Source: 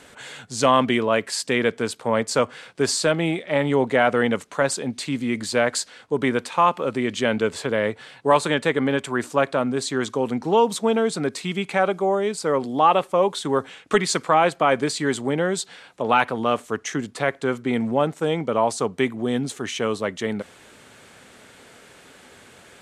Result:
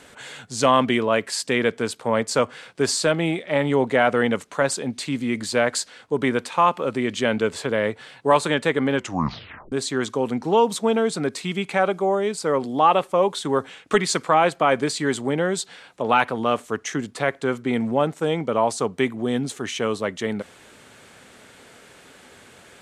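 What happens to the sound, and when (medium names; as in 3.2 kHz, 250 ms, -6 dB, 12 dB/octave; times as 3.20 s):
8.95 s: tape stop 0.77 s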